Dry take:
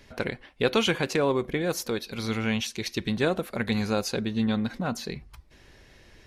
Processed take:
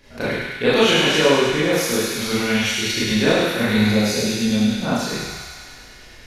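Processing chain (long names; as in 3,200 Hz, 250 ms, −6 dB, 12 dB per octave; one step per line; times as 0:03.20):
0:03.89–0:04.82: parametric band 1,200 Hz −12.5 dB 0.96 octaves
on a send: delay with a high-pass on its return 102 ms, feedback 76%, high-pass 1,500 Hz, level −3 dB
on the sum: four-comb reverb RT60 0.77 s, combs from 26 ms, DRR −9 dB
level −1 dB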